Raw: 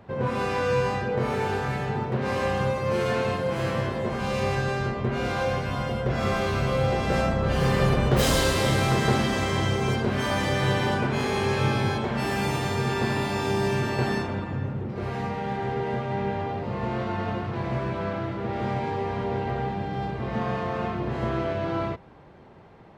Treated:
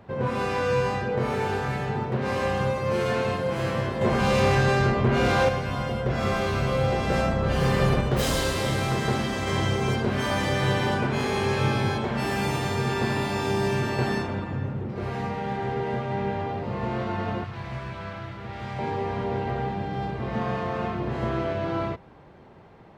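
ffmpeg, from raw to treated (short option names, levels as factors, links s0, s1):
-filter_complex "[0:a]asettb=1/sr,asplit=3[s0][s1][s2];[s0]atrim=end=4.014[s3];[s1]atrim=start=4.01:end=5.49,asetpts=PTS-STARTPTS,afade=t=in:d=0.004:c=qsin,afade=t=out:st=1.476:d=0.004:c=qsin,aeval=exprs='0.188*sin(PI/2*1.41*val(0)/0.188)':c=same[s4];[s2]atrim=start=5.486[s5];[s3][s4]acrossfade=d=0.004:c1=hsin:c2=qsin[s6];[s6][s5]acrossfade=d=0.004:c1=qsin:c2=hsin,asettb=1/sr,asplit=3[s7][s8][s9];[s7]atrim=end=17.444[s10];[s8]atrim=start=17.44:end=18.79,asetpts=PTS-STARTPTS,afade=t=in:d=0.004:c=qsin,afade=t=out:st=1.346:d=0.004:c=qsin,equalizer=f=360:t=o:w=2.6:g=-12[s11];[s9]atrim=start=18.786[s12];[s10][s11]acrossfade=d=0.004:c1=hsin:c2=qsin[s13];[s13][s12]acrossfade=d=0.004:c1=qsin:c2=hsin,asplit=3[s14][s15][s16];[s14]atrim=end=8.012[s17];[s15]atrim=start=8.008:end=9.472,asetpts=PTS-STARTPTS,volume=0.708[s18];[s16]atrim=start=9.468[s19];[s17][s18]acrossfade=d=0.004:c1=hsin:c2=hsin[s20];[s20][s19]acrossfade=d=0.004:c1=hsin:c2=hsin"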